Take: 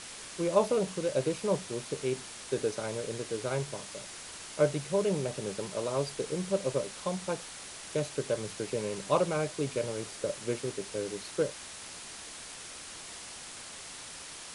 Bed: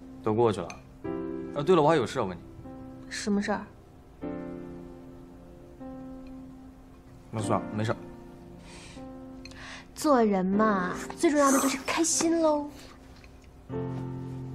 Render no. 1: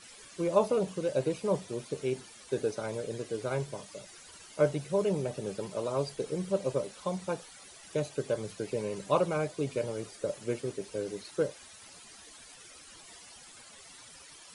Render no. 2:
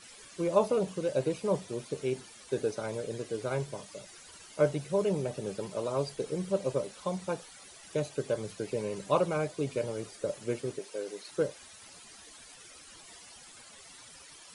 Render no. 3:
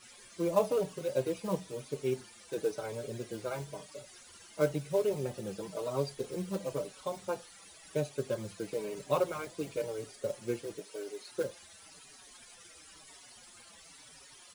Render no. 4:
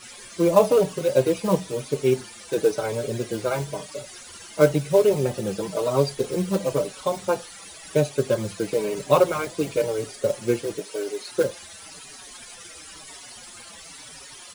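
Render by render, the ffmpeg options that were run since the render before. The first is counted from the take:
ffmpeg -i in.wav -af "afftdn=noise_reduction=13:noise_floor=-45" out.wav
ffmpeg -i in.wav -filter_complex "[0:a]asettb=1/sr,asplit=3[link_01][link_02][link_03];[link_01]atrim=end=10.794[link_04];[link_02]atrim=start=10.79:end=11.29,asetpts=PTS-STARTPTS,afade=type=in:duration=0.004:curve=qsin,afade=type=out:start_time=0.496:duration=0.004:curve=qsin,highpass=380[link_05];[link_03]atrim=start=11.286[link_06];[link_04][link_05]acrossfade=duration=0.004:curve1=hsin:curve2=qsin[link_07];[link_07][link_06]acrossfade=duration=0.004:curve1=qsin:curve2=hsin" out.wav
ffmpeg -i in.wav -filter_complex "[0:a]acrusher=bits=5:mode=log:mix=0:aa=0.000001,asplit=2[link_01][link_02];[link_02]adelay=5,afreqshift=-0.98[link_03];[link_01][link_03]amix=inputs=2:normalize=1" out.wav
ffmpeg -i in.wav -af "volume=12dB,alimiter=limit=-3dB:level=0:latency=1" out.wav

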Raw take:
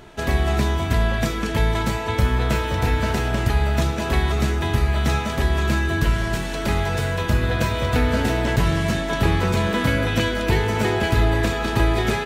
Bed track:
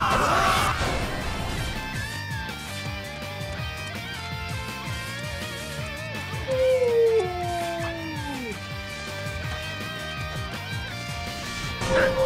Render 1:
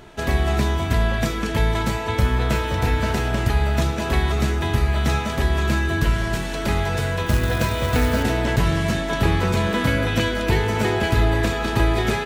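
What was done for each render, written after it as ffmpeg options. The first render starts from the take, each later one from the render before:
ffmpeg -i in.wav -filter_complex "[0:a]asettb=1/sr,asplit=3[link_01][link_02][link_03];[link_01]atrim=end=7.264[link_04];[link_02]atrim=start=7.26:end=8.23,asetpts=PTS-STARTPTS,afade=type=in:duration=0.004:curve=qsin,afade=type=out:start_time=0.966:duration=0.004:curve=qsin,acrusher=bits=4:mode=log:mix=0:aa=0.000001[link_05];[link_03]atrim=start=8.226[link_06];[link_04][link_05]acrossfade=duration=0.004:curve1=hsin:curve2=qsin[link_07];[link_07][link_06]acrossfade=duration=0.004:curve1=qsin:curve2=hsin" out.wav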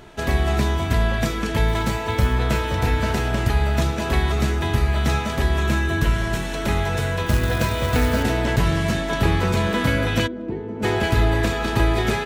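ffmpeg -i in.wav -filter_complex "[0:a]asettb=1/sr,asplit=3[link_01][link_02][link_03];[link_01]atrim=end=1.684[link_04];[link_02]atrim=start=1.68:end=2.33,asetpts=PTS-STARTPTS,afade=type=in:duration=0.004:curve=qsin,afade=type=out:start_time=0.646:duration=0.004:curve=qsin,acrusher=bits=8:mode=log:mix=0:aa=0.000001[link_05];[link_03]atrim=start=2.326[link_06];[link_04][link_05]acrossfade=duration=0.004:curve1=hsin:curve2=qsin[link_07];[link_07][link_06]acrossfade=duration=0.004:curve1=qsin:curve2=hsin,asettb=1/sr,asplit=3[link_08][link_09][link_10];[link_08]atrim=end=5.574[link_11];[link_09]atrim=start=5.57:end=7.17,asetpts=PTS-STARTPTS,afade=type=in:duration=0.004:curve=qsin,afade=type=out:start_time=1.596:duration=0.004:curve=qsin,bandreject=frequency=4700:width=14[link_12];[link_10]atrim=start=7.166[link_13];[link_11][link_12]acrossfade=duration=0.004:curve1=hsin:curve2=qsin[link_14];[link_14][link_13]acrossfade=duration=0.004:curve1=qsin:curve2=hsin,asplit=3[link_15][link_16][link_17];[link_15]afade=type=out:start_time=10.26:duration=0.02[link_18];[link_16]bandpass=frequency=280:width_type=q:width=2.1,afade=type=in:start_time=10.26:duration=0.02,afade=type=out:start_time=10.82:duration=0.02[link_19];[link_17]afade=type=in:start_time=10.82:duration=0.02[link_20];[link_18][link_19][link_20]amix=inputs=3:normalize=0" out.wav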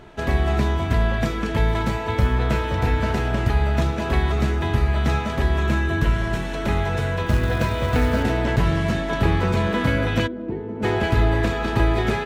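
ffmpeg -i in.wav -af "highshelf=frequency=4500:gain=-10.5" out.wav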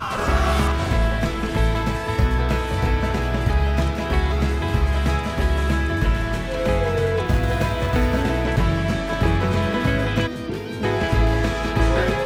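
ffmpeg -i in.wav -i bed.wav -filter_complex "[1:a]volume=-4dB[link_01];[0:a][link_01]amix=inputs=2:normalize=0" out.wav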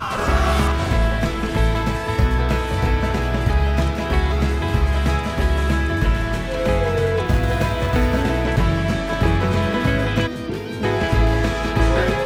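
ffmpeg -i in.wav -af "volume=1.5dB" out.wav

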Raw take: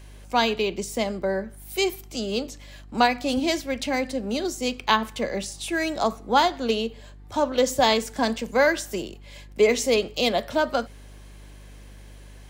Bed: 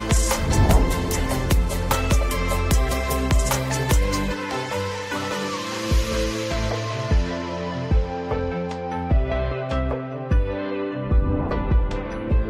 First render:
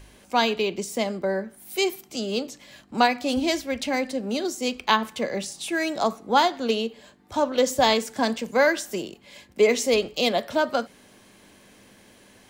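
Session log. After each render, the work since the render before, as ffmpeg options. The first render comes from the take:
ffmpeg -i in.wav -af "bandreject=frequency=50:width_type=h:width=4,bandreject=frequency=100:width_type=h:width=4,bandreject=frequency=150:width_type=h:width=4" out.wav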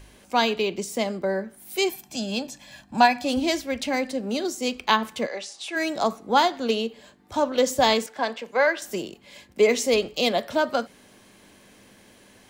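ffmpeg -i in.wav -filter_complex "[0:a]asettb=1/sr,asplit=3[link_01][link_02][link_03];[link_01]atrim=end=1.894[link_04];[link_02]atrim=start=1.89:end=3.25,asetpts=PTS-STARTPTS,afade=type=in:duration=0.004:curve=qsin,afade=type=out:start_time=1.356:duration=0.004:curve=qsin,aecho=1:1:1.2:0.65,atrim=end_sample=59976[link_05];[link_03]atrim=start=3.246[link_06];[link_04][link_05]acrossfade=duration=0.004:curve1=hsin:curve2=qsin[link_07];[link_07][link_06]acrossfade=duration=0.004:curve1=qsin:curve2=hsin,asplit=3[link_08][link_09][link_10];[link_08]afade=type=out:start_time=5.26:duration=0.02[link_11];[link_09]highpass=540,lowpass=6100,afade=type=in:start_time=5.26:duration=0.02,afade=type=out:start_time=5.75:duration=0.02[link_12];[link_10]afade=type=in:start_time=5.75:duration=0.02[link_13];[link_11][link_12][link_13]amix=inputs=3:normalize=0,asettb=1/sr,asplit=3[link_14][link_15][link_16];[link_14]atrim=end=8.064[link_17];[link_15]atrim=start=8.06:end=8.82,asetpts=PTS-STARTPTS,afade=type=in:duration=0.004:curve=qsin,afade=type=out:start_time=0.756:duration=0.004:curve=qsin,acrossover=split=390 4000:gain=0.178 1 0.224[link_18][link_19][link_20];[link_18][link_19][link_20]amix=inputs=3:normalize=0[link_21];[link_16]atrim=start=8.816[link_22];[link_17][link_21]acrossfade=duration=0.004:curve1=hsin:curve2=qsin[link_23];[link_23][link_22]acrossfade=duration=0.004:curve1=qsin:curve2=hsin" out.wav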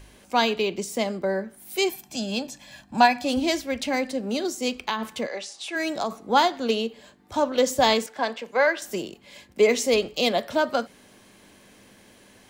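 ffmpeg -i in.wav -filter_complex "[0:a]asettb=1/sr,asplit=3[link_01][link_02][link_03];[link_01]atrim=end=4.854[link_04];[link_02]atrim=start=4.85:end=6.19,asetpts=PTS-STARTPTS,afade=type=in:duration=0.004:curve=qsin,afade=type=out:start_time=1.336:duration=0.004:curve=qsin,acompressor=threshold=-22dB:ratio=6:attack=3.2:release=140:knee=1:detection=peak[link_05];[link_03]atrim=start=6.186[link_06];[link_04][link_05]acrossfade=duration=0.004:curve1=hsin:curve2=qsin[link_07];[link_07][link_06]acrossfade=duration=0.004:curve1=qsin:curve2=hsin" out.wav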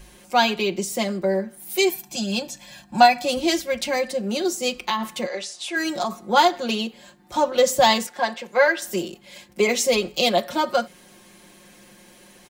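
ffmpeg -i in.wav -af "highshelf=frequency=7200:gain=5,aecho=1:1:5.6:0.89" out.wav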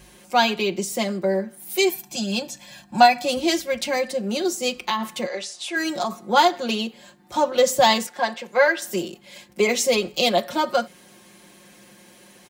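ffmpeg -i in.wav -af "highpass=64" out.wav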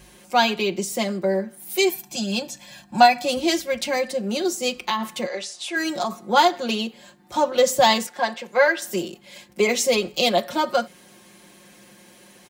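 ffmpeg -i in.wav -af anull out.wav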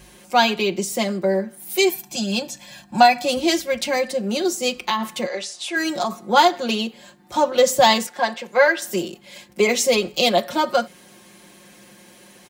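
ffmpeg -i in.wav -af "volume=2dB,alimiter=limit=-2dB:level=0:latency=1" out.wav

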